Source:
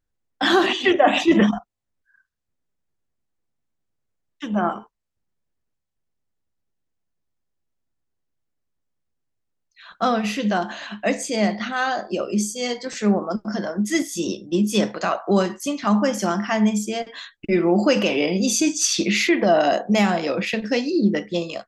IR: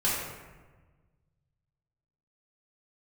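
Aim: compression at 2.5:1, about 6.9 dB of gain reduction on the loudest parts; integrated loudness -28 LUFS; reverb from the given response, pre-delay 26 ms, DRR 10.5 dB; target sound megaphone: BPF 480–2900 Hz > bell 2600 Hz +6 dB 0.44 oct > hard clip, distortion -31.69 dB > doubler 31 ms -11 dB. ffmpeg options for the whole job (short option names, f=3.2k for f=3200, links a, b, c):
-filter_complex "[0:a]acompressor=threshold=-21dB:ratio=2.5,asplit=2[a][b];[1:a]atrim=start_sample=2205,adelay=26[c];[b][c]afir=irnorm=-1:irlink=0,volume=-21.5dB[d];[a][d]amix=inputs=2:normalize=0,highpass=480,lowpass=2.9k,equalizer=f=2.6k:t=o:w=0.44:g=6,asoftclip=type=hard:threshold=-14.5dB,asplit=2[e][f];[f]adelay=31,volume=-11dB[g];[e][g]amix=inputs=2:normalize=0,volume=-0.5dB"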